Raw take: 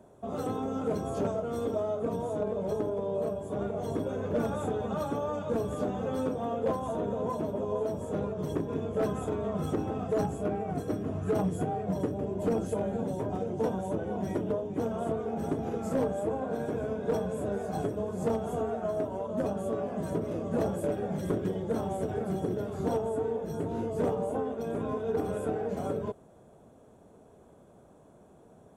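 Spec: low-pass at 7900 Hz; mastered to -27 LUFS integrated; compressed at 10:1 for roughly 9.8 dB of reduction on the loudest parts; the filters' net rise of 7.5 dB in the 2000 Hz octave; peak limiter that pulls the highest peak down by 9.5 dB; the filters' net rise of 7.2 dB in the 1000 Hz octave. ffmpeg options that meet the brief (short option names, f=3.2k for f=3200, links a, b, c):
-af "lowpass=7.9k,equalizer=f=1k:t=o:g=8.5,equalizer=f=2k:t=o:g=6.5,acompressor=threshold=-32dB:ratio=10,volume=13.5dB,alimiter=limit=-18.5dB:level=0:latency=1"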